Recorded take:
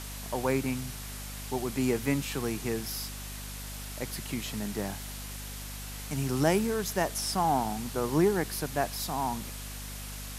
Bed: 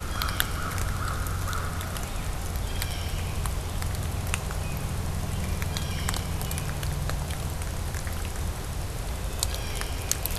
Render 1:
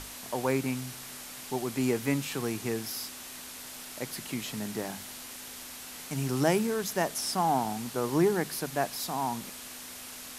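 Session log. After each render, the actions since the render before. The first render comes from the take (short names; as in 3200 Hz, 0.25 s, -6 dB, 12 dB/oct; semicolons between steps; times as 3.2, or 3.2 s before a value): notches 50/100/150/200 Hz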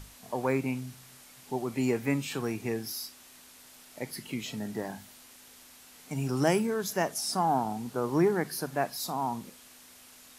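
noise print and reduce 10 dB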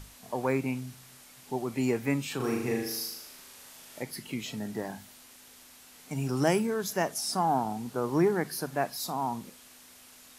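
2.36–4.03 flutter echo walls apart 6.7 m, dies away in 0.8 s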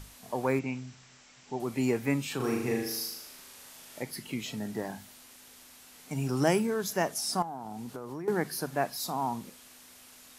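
0.59–1.6 rippled Chebyshev low-pass 7700 Hz, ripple 3 dB; 7.42–8.28 compressor 10:1, threshold -35 dBFS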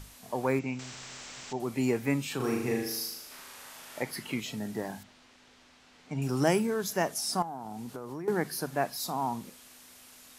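0.79–1.53 spectral compressor 2:1; 3.31–4.4 bell 1200 Hz +8 dB 2.4 oct; 5.03–6.22 air absorption 140 m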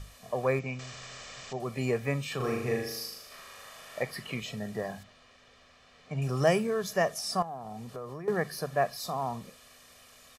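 high shelf 7200 Hz -10.5 dB; comb 1.7 ms, depth 67%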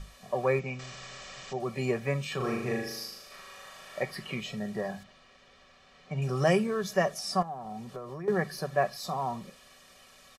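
high shelf 10000 Hz -9 dB; comb 5.3 ms, depth 47%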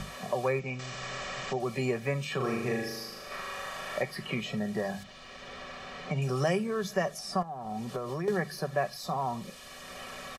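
three-band squash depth 70%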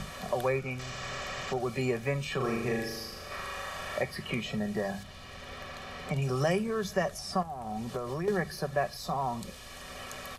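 add bed -22 dB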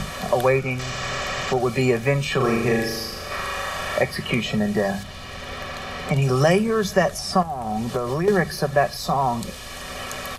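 gain +10.5 dB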